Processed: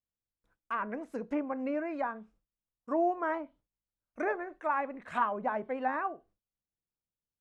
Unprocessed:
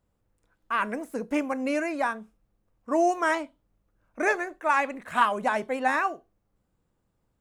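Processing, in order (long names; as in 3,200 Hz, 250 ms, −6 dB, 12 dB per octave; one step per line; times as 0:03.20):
noise gate with hold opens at −56 dBFS
treble cut that deepens with the level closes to 1,300 Hz, closed at −23.5 dBFS
level −5.5 dB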